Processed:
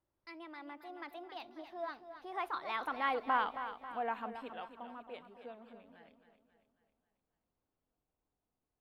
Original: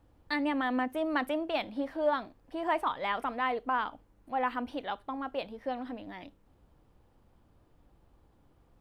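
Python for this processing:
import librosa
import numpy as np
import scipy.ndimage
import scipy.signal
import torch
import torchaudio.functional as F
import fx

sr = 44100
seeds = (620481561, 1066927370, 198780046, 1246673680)

p1 = fx.doppler_pass(x, sr, speed_mps=41, closest_m=19.0, pass_at_s=3.35)
p2 = fx.low_shelf(p1, sr, hz=180.0, db=-10.0)
p3 = p2 + fx.echo_feedback(p2, sr, ms=271, feedback_pct=50, wet_db=-10.5, dry=0)
y = p3 * 10.0 ** (-1.0 / 20.0)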